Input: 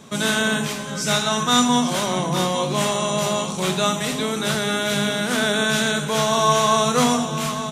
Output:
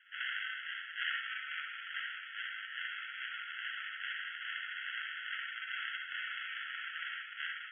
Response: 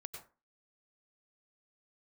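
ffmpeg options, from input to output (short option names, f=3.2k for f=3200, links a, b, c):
-filter_complex "[0:a]acompressor=threshold=-22dB:ratio=2.5,aderivative,acrusher=samples=37:mix=1:aa=0.000001[a];[1:a]atrim=start_sample=2205,asetrate=70560,aresample=44100[b];[a][b]afir=irnorm=-1:irlink=0,afftfilt=real='re*between(b*sr/4096,1300,3400)':imag='im*between(b*sr/4096,1300,3400)':win_size=4096:overlap=0.75,volume=14dB"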